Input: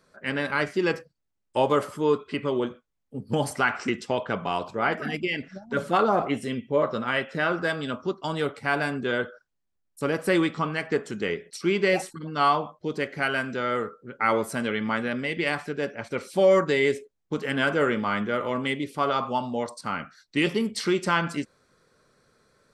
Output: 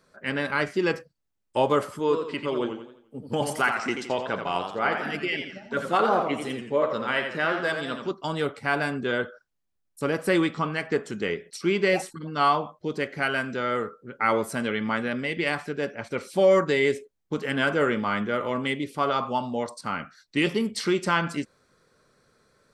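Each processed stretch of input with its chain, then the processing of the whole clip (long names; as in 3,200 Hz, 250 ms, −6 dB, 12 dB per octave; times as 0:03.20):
0:01.99–0:08.11: low-shelf EQ 210 Hz −8 dB + feedback echo with a swinging delay time 86 ms, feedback 43%, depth 132 cents, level −7 dB
whole clip: no processing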